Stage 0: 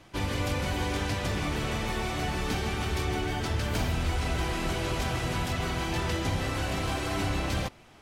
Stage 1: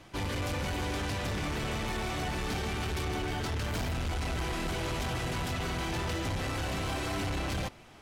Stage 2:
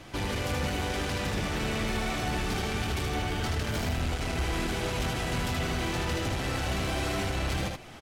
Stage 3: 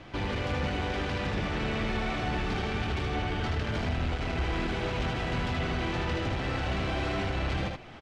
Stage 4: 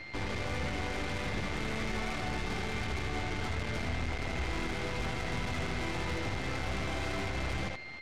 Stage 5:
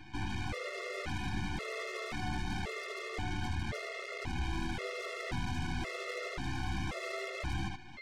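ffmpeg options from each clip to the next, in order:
ffmpeg -i in.wav -af "asoftclip=type=tanh:threshold=-30dB,volume=1dB" out.wav
ffmpeg -i in.wav -af "equalizer=frequency=1000:width=4.2:gain=-3,acompressor=threshold=-39dB:ratio=2,aecho=1:1:77:0.668,volume=6dB" out.wav
ffmpeg -i in.wav -af "lowpass=3600" out.wav
ffmpeg -i in.wav -af "bandreject=frequency=2900:width=15,aeval=exprs='val(0)+0.0112*sin(2*PI*2100*n/s)':channel_layout=same,aeval=exprs='0.1*(cos(1*acos(clip(val(0)/0.1,-1,1)))-cos(1*PI/2))+0.0158*(cos(8*acos(clip(val(0)/0.1,-1,1)))-cos(8*PI/2))':channel_layout=same,volume=-5.5dB" out.wav
ffmpeg -i in.wav -af "afftfilt=real='re*gt(sin(2*PI*0.94*pts/sr)*(1-2*mod(floor(b*sr/1024/360),2)),0)':imag='im*gt(sin(2*PI*0.94*pts/sr)*(1-2*mod(floor(b*sr/1024/360),2)),0)':win_size=1024:overlap=0.75" out.wav

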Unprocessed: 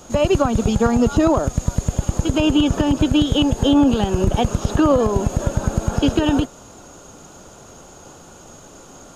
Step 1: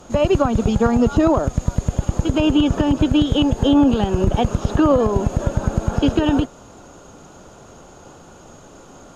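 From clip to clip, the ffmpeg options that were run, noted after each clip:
ffmpeg -i in.wav -af "aemphasis=mode=reproduction:type=cd" out.wav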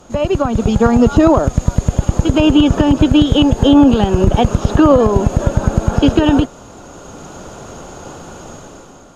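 ffmpeg -i in.wav -af "dynaudnorm=framelen=140:gausssize=9:maxgain=10.5dB" out.wav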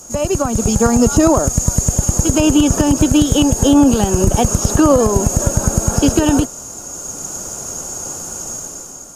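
ffmpeg -i in.wav -af "aexciter=amount=11.1:drive=4.6:freq=5300,volume=-2dB" out.wav

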